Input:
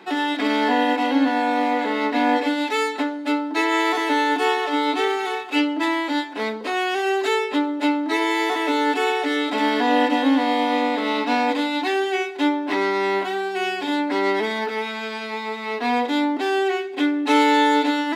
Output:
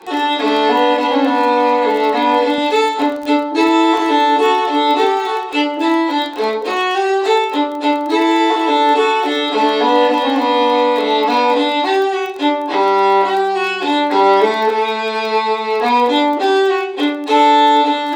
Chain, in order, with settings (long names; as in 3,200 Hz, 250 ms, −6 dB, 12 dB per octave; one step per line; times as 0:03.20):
high-pass filter 140 Hz 24 dB per octave
notch filter 630 Hz, Q 12
convolution reverb RT60 0.45 s, pre-delay 3 ms, DRR −7 dB
automatic gain control
octave-band graphic EQ 500/1,000/4,000/8,000 Hz +11/+5/+7/+8 dB
surface crackle 21 per second −12 dBFS
0:02.58–0:05.05: bass and treble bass +9 dB, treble +1 dB
level −9 dB